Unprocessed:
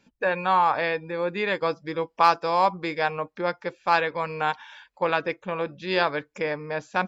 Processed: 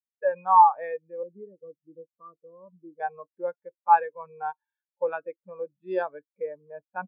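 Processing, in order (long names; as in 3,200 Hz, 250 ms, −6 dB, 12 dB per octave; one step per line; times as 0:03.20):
0:01.23–0:03.00: moving average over 54 samples
every bin expanded away from the loudest bin 2.5 to 1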